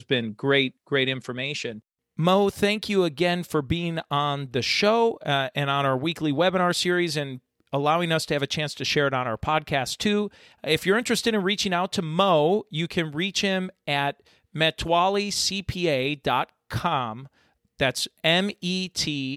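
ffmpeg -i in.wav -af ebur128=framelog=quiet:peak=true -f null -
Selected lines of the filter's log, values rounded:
Integrated loudness:
  I:         -24.2 LUFS
  Threshold: -34.4 LUFS
Loudness range:
  LRA:         2.0 LU
  Threshold: -44.3 LUFS
  LRA low:   -25.3 LUFS
  LRA high:  -23.3 LUFS
True peak:
  Peak:       -6.7 dBFS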